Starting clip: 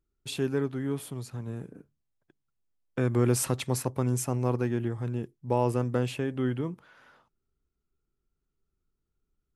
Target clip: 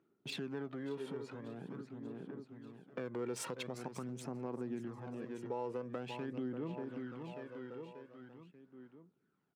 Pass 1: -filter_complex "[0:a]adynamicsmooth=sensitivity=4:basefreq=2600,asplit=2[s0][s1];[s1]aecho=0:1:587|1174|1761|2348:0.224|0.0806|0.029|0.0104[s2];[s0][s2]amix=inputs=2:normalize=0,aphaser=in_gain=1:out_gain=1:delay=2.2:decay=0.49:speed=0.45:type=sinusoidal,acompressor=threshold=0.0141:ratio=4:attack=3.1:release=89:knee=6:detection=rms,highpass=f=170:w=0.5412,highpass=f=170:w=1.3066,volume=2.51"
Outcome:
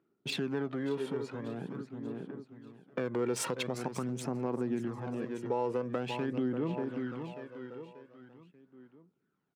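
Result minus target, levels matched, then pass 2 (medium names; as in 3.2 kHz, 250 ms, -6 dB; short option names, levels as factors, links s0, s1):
compression: peak gain reduction -8 dB
-filter_complex "[0:a]adynamicsmooth=sensitivity=4:basefreq=2600,asplit=2[s0][s1];[s1]aecho=0:1:587|1174|1761|2348:0.224|0.0806|0.029|0.0104[s2];[s0][s2]amix=inputs=2:normalize=0,aphaser=in_gain=1:out_gain=1:delay=2.2:decay=0.49:speed=0.45:type=sinusoidal,acompressor=threshold=0.00422:ratio=4:attack=3.1:release=89:knee=6:detection=rms,highpass=f=170:w=0.5412,highpass=f=170:w=1.3066,volume=2.51"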